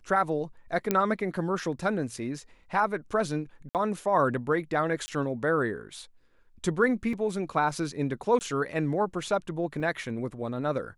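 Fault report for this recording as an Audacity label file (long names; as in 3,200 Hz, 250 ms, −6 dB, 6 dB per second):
0.910000	0.910000	click −10 dBFS
3.690000	3.750000	drop-out 58 ms
5.060000	5.080000	drop-out 20 ms
7.130000	7.130000	drop-out 3.2 ms
8.390000	8.410000	drop-out 19 ms
9.800000	9.800000	drop-out 3 ms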